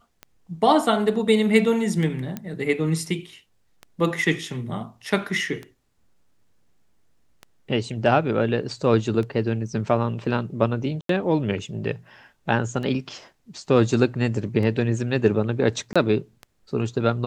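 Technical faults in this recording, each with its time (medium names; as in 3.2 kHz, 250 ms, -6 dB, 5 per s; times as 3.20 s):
tick 33 1/3 rpm -21 dBFS
2.37 s: pop -16 dBFS
11.01–11.09 s: dropout 83 ms
15.93–15.96 s: dropout 26 ms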